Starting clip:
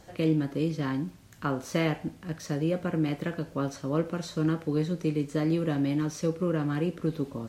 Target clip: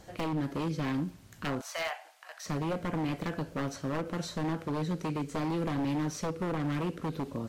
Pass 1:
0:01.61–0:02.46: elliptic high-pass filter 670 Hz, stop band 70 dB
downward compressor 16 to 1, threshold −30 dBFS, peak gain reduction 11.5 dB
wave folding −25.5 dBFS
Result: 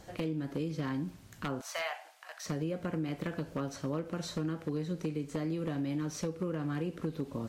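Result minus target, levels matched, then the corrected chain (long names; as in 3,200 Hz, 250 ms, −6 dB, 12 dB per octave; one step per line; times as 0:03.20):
downward compressor: peak gain reduction +6 dB
0:01.61–0:02.46: elliptic high-pass filter 670 Hz, stop band 70 dB
downward compressor 16 to 1, threshold −23.5 dBFS, peak gain reduction 5.5 dB
wave folding −25.5 dBFS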